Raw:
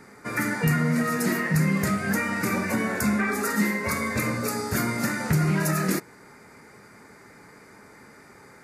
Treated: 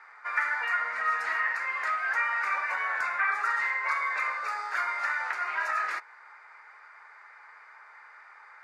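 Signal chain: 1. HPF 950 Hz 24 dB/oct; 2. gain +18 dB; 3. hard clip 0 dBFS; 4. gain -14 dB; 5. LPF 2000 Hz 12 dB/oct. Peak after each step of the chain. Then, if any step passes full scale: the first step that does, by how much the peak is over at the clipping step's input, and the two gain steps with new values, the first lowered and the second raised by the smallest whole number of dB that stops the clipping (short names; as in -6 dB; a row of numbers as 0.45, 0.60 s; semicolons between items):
-13.0, +5.0, 0.0, -14.0, -15.0 dBFS; step 2, 5.0 dB; step 2 +13 dB, step 4 -9 dB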